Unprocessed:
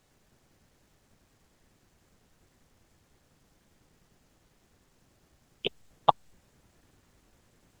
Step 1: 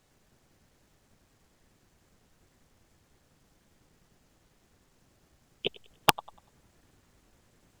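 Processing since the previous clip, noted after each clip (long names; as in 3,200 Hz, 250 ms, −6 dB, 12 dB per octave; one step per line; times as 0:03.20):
feedback echo with a high-pass in the loop 97 ms, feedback 35%, level −20 dB
wrap-around overflow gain 4 dB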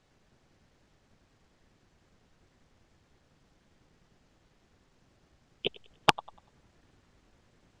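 low-pass filter 5,500 Hz 12 dB per octave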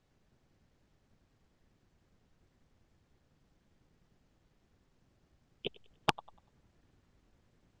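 low-shelf EQ 360 Hz +5.5 dB
level −8.5 dB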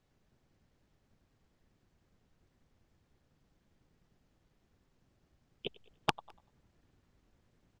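far-end echo of a speakerphone 210 ms, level −26 dB
level −1.5 dB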